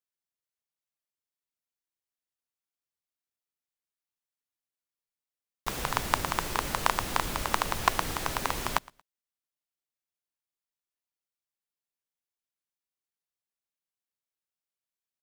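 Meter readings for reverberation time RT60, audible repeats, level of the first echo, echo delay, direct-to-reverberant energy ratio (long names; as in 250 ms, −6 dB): no reverb audible, 1, −24.0 dB, 115 ms, no reverb audible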